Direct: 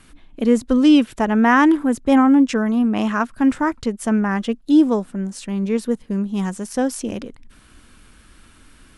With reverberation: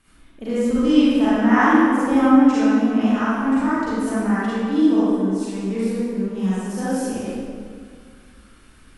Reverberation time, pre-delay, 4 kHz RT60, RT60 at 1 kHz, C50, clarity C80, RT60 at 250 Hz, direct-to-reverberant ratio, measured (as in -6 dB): 2.1 s, 33 ms, 1.4 s, 2.0 s, -7.0 dB, -3.0 dB, 2.3 s, -12.0 dB